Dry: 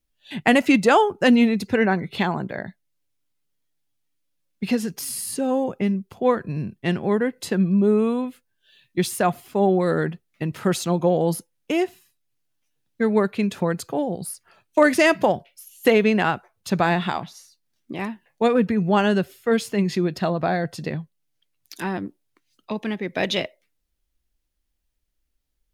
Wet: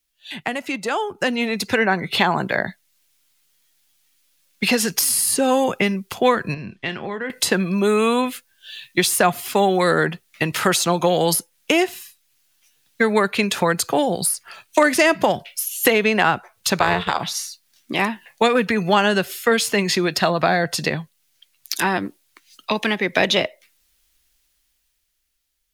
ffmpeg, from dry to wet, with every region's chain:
ffmpeg -i in.wav -filter_complex "[0:a]asettb=1/sr,asplit=3[link_01][link_02][link_03];[link_01]atrim=end=6.544[link_04];[link_02]atrim=start=6.54:end=7.3,asetpts=PTS-STARTPTS,afade=type=in:duration=0.004:curve=qsin,afade=type=out:start_time=0.756:duration=0.004:curve=qsin,lowpass=4100,acompressor=threshold=-36dB:ratio=4:attack=3.2:release=140:knee=1:detection=peak,asplit=2[link_05][link_06];[link_06]adelay=31,volume=-12.5dB[link_07];[link_05][link_07]amix=inputs=2:normalize=0,atrim=end_sample=33516[link_08];[link_03]atrim=start=7.296[link_09];[link_04][link_08]acrossfade=duration=0.004:curve1=hsin:curve2=qsin[link_10];[link_10][link_09]acrossfade=duration=0.004:curve1=qsin:curve2=hsin,asettb=1/sr,asplit=3[link_11][link_12][link_13];[link_11]atrim=end=16.794[link_14];[link_12]atrim=start=16.79:end=17.2,asetpts=PTS-STARTPTS,afade=type=in:duration=0.004:curve=qsin,afade=type=out:start_time=0.406:duration=0.004:curve=qsin,agate=range=-33dB:threshold=-23dB:ratio=3:release=100:detection=peak,tremolo=f=270:d=0.824[link_15];[link_13]atrim=start=17.196[link_16];[link_14][link_15]acrossfade=duration=0.004:curve1=hsin:curve2=qsin[link_17];[link_17][link_16]acrossfade=duration=0.004:curve1=qsin:curve2=hsin,acrossover=split=370|1200[link_18][link_19][link_20];[link_18]acompressor=threshold=-28dB:ratio=4[link_21];[link_19]acompressor=threshold=-28dB:ratio=4[link_22];[link_20]acompressor=threshold=-40dB:ratio=4[link_23];[link_21][link_22][link_23]amix=inputs=3:normalize=0,tiltshelf=frequency=860:gain=-8.5,dynaudnorm=framelen=120:gausssize=21:maxgain=11.5dB,volume=1.5dB" out.wav

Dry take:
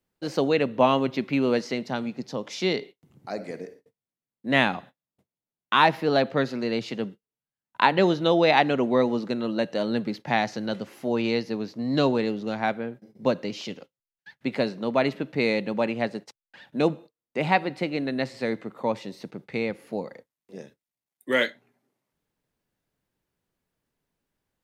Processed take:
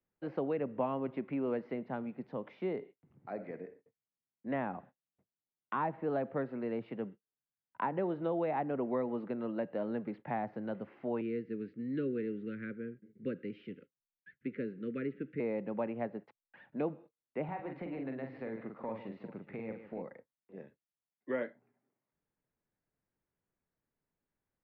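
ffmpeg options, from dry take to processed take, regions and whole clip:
ffmpeg -i in.wav -filter_complex "[0:a]asettb=1/sr,asplit=3[link_01][link_02][link_03];[link_01]atrim=end=11.214[link_04];[link_02]atrim=start=11.21:end=15.4,asetpts=PTS-STARTPTS,afade=type=in:duration=0.004:curve=qsin,afade=type=out:start_time=4.186:duration=0.004:curve=qsin,asuperstop=centerf=820:order=8:qfactor=0.87,highshelf=frequency=6100:gain=-10[link_05];[link_03]atrim=start=15.396[link_06];[link_04][link_05]acrossfade=duration=0.004:curve1=hsin:curve2=qsin[link_07];[link_07][link_06]acrossfade=duration=0.004:curve1=qsin:curve2=hsin,asettb=1/sr,asplit=3[link_08][link_09][link_10];[link_08]atrim=end=17.444[link_11];[link_09]atrim=start=17.44:end=20.02,asetpts=PTS-STARTPTS,afade=type=in:duration=0.004:curve=qsin,afade=type=out:start_time=2.576:duration=0.004:curve=qsin,acompressor=threshold=-28dB:ratio=4:attack=3.2:release=140:knee=1:detection=peak,aecho=1:1:45|151|413:0.562|0.251|0.119,atrim=end_sample=113778[link_12];[link_10]atrim=start=20.016[link_13];[link_11][link_12]acrossfade=duration=0.004:curve1=hsin:curve2=qsin[link_14];[link_14][link_13]acrossfade=duration=0.004:curve1=qsin:curve2=hsin,acrossover=split=280|1200[link_15][link_16][link_17];[link_15]acompressor=threshold=-34dB:ratio=4[link_18];[link_16]acompressor=threshold=-24dB:ratio=4[link_19];[link_17]acompressor=threshold=-42dB:ratio=4[link_20];[link_18][link_19][link_20]amix=inputs=3:normalize=0,lowpass=frequency=2300:width=0.5412,lowpass=frequency=2300:width=1.3066,volume=-8dB" out.wav

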